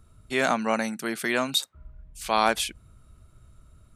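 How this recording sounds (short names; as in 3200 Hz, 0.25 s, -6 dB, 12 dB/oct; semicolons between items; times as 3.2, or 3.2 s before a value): noise floor -56 dBFS; spectral tilt -2.5 dB/oct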